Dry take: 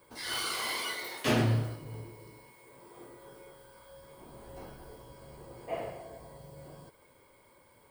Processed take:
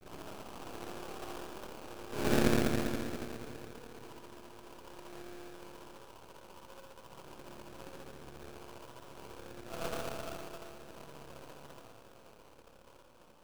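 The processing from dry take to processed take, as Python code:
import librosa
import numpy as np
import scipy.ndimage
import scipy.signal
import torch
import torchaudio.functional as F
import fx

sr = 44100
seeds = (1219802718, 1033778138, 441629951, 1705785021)

y = fx.tape_start_head(x, sr, length_s=0.38)
y = fx.highpass(y, sr, hz=240.0, slope=6)
y = fx.rev_spring(y, sr, rt60_s=1.1, pass_ms=(57,), chirp_ms=40, drr_db=-8.5)
y = fx.stretch_grains(y, sr, factor=1.7, grain_ms=137.0)
y = fx.echo_alternate(y, sr, ms=155, hz=1400.0, feedback_pct=82, wet_db=-12.5)
y = fx.env_lowpass_down(y, sr, base_hz=570.0, full_db=-38.0)
y = fx.sample_hold(y, sr, seeds[0], rate_hz=2000.0, jitter_pct=20)
y = np.maximum(y, 0.0)
y = F.gain(torch.from_numpy(y), -1.5).numpy()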